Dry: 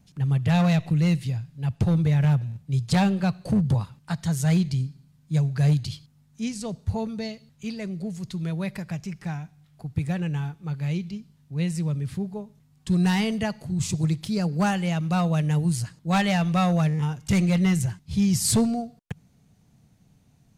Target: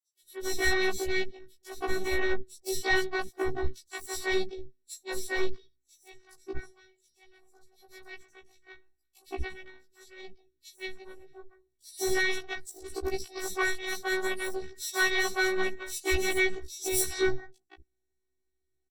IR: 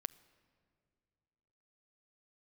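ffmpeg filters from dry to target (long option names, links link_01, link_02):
-filter_complex "[0:a]aeval=exprs='0.178*(cos(1*acos(clip(val(0)/0.178,-1,1)))-cos(1*PI/2))+0.0708*(cos(3*acos(clip(val(0)/0.178,-1,1)))-cos(3*PI/2))+0.00316*(cos(5*acos(clip(val(0)/0.178,-1,1)))-cos(5*PI/2))':channel_layout=same,afftfilt=real='hypot(re,im)*cos(PI*b)':imag='0':win_size=512:overlap=0.75,acrossover=split=240|4300[link_01][link_02][link_03];[link_02]adelay=190[link_04];[link_01]adelay=260[link_05];[link_05][link_04][link_03]amix=inputs=3:normalize=0,asetrate=48000,aresample=44100,afftfilt=real='re*1.73*eq(mod(b,3),0)':imag='im*1.73*eq(mod(b,3),0)':win_size=2048:overlap=0.75,volume=6.5dB"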